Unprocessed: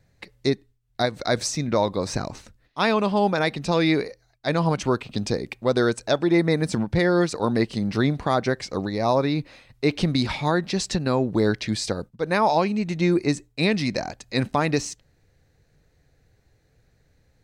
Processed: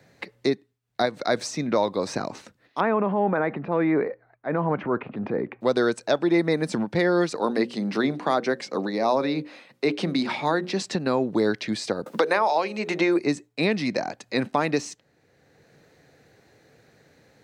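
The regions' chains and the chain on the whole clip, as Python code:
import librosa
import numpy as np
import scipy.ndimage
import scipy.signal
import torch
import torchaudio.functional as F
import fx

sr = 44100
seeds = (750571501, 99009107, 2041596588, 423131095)

y = fx.chain(x, sr, fx.transient(attack_db=-8, sustain_db=6),
    fx.lowpass(hz=1800.0, slope=24), at=(2.8, 5.61))
y = fx.chain(y, sr, fx.highpass(hz=150.0, slope=24),
    fx.hum_notches(base_hz=60, count=9), at=(7.4, 10.82))
y = fx.chain(y, sr, fx.highpass(hz=400.0, slope=12),
    fx.hum_notches(base_hz=60, count=9),
    fx.band_squash(depth_pct=100), at=(12.06, 13.19))
y = scipy.signal.sosfilt(scipy.signal.butter(2, 210.0, 'highpass', fs=sr, output='sos'), y)
y = fx.high_shelf(y, sr, hz=4600.0, db=-6.5)
y = fx.band_squash(y, sr, depth_pct=40)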